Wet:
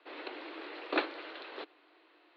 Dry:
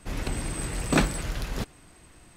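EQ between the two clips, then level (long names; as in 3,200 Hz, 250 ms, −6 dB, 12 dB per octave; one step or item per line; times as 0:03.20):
Chebyshev band-pass filter 310–4,200 Hz, order 5
−5.5 dB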